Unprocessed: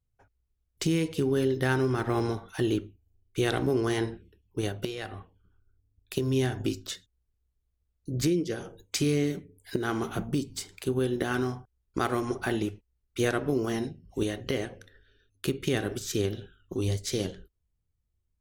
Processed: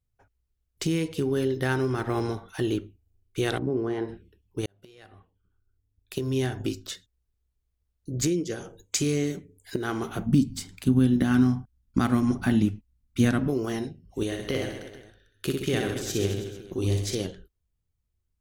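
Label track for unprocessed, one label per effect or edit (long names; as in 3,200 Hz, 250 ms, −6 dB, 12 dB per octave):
3.570000	4.080000	resonant band-pass 150 Hz → 560 Hz, Q 0.54
4.660000	6.440000	fade in
8.200000	9.740000	parametric band 7,000 Hz +9.5 dB 0.34 octaves
10.260000	13.480000	low shelf with overshoot 310 Hz +7.5 dB, Q 3
14.260000	17.150000	reverse bouncing-ball delay first gap 60 ms, each gap 1.2×, echoes 5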